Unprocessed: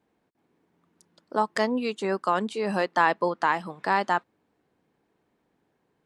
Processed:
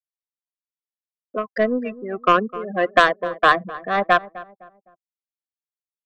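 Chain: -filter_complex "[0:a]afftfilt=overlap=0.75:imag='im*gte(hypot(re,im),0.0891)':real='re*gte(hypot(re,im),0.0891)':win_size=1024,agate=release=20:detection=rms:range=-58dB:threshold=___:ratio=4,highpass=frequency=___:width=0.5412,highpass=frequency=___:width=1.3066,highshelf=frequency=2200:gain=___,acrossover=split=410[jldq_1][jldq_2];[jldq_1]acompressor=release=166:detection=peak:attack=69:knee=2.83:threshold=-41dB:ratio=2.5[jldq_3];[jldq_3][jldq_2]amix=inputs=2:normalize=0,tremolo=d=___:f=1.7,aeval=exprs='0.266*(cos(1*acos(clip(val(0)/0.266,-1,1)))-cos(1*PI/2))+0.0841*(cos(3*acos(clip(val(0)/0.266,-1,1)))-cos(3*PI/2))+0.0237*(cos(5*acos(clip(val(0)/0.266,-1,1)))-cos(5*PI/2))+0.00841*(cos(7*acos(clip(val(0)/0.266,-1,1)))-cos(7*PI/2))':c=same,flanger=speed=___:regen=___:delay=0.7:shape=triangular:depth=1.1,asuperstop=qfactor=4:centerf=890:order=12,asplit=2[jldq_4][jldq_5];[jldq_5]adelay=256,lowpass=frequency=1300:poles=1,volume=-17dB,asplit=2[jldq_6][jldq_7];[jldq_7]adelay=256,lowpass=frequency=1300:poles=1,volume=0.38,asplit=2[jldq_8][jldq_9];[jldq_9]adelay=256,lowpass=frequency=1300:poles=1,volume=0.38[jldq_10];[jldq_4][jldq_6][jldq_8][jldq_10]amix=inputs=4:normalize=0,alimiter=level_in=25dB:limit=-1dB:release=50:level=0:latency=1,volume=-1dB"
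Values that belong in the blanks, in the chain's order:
-55dB, 120, 120, -8.5, 0.65, 0.42, -61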